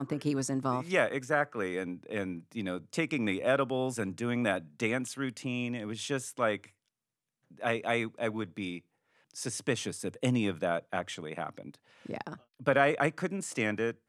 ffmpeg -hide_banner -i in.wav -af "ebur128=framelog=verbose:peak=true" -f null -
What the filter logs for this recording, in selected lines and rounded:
Integrated loudness:
  I:         -32.3 LUFS
  Threshold: -42.7 LUFS
Loudness range:
  LRA:         3.3 LU
  Threshold: -53.4 LUFS
  LRA low:   -35.2 LUFS
  LRA high:  -32.0 LUFS
True peak:
  Peak:      -10.0 dBFS